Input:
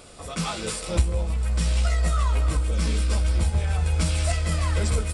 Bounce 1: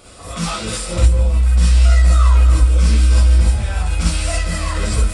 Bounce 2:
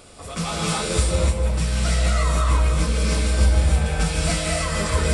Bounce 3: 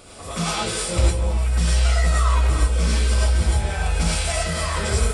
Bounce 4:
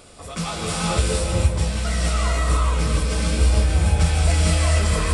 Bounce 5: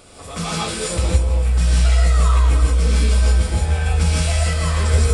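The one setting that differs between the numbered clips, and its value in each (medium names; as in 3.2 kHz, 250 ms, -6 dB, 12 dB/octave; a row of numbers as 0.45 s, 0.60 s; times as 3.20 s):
gated-style reverb, gate: 80 ms, 330 ms, 130 ms, 490 ms, 190 ms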